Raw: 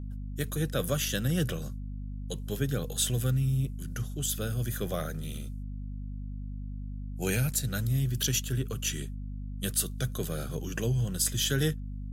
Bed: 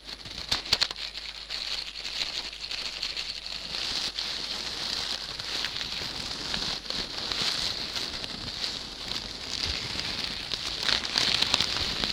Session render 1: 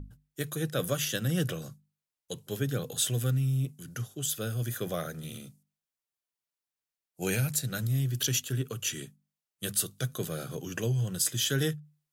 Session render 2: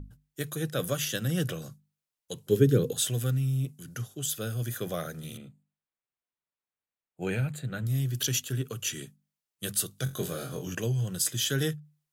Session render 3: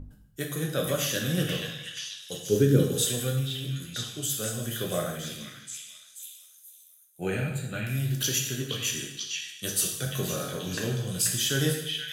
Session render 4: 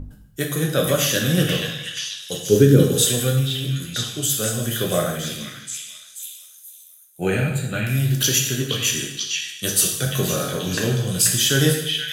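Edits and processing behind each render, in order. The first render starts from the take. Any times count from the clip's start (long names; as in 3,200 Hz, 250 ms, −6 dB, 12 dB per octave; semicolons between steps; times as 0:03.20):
mains-hum notches 50/100/150/200/250 Hz
0:02.49–0:02.93: low shelf with overshoot 540 Hz +7.5 dB, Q 3; 0:05.37–0:07.87: moving average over 8 samples; 0:10.04–0:10.75: flutter between parallel walls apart 3.8 metres, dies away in 0.27 s
echo through a band-pass that steps 482 ms, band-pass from 2,600 Hz, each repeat 0.7 octaves, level −1 dB; dense smooth reverb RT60 0.81 s, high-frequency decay 1×, DRR 0 dB
level +8.5 dB; brickwall limiter −2 dBFS, peak gain reduction 2 dB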